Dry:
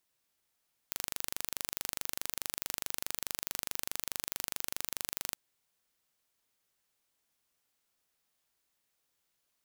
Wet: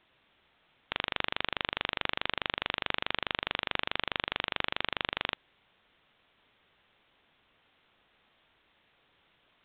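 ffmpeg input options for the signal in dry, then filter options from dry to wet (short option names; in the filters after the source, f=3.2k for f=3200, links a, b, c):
-f lavfi -i "aevalsrc='0.447*eq(mod(n,1785),0)':d=4.43:s=44100"
-af "acontrast=37,apsyclip=12.5dB,aresample=8000,acrusher=bits=3:mode=log:mix=0:aa=0.000001,aresample=44100"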